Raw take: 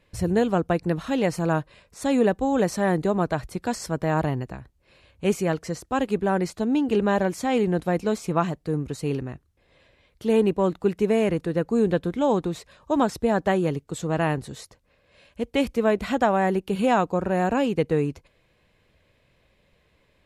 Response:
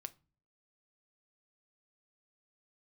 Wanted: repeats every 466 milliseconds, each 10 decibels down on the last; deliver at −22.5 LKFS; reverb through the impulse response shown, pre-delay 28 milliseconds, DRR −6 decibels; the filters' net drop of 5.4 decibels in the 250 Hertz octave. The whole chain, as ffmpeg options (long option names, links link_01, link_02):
-filter_complex "[0:a]equalizer=frequency=250:width_type=o:gain=-7.5,aecho=1:1:466|932|1398|1864:0.316|0.101|0.0324|0.0104,asplit=2[link_01][link_02];[1:a]atrim=start_sample=2205,adelay=28[link_03];[link_02][link_03]afir=irnorm=-1:irlink=0,volume=10.5dB[link_04];[link_01][link_04]amix=inputs=2:normalize=0,volume=-3dB"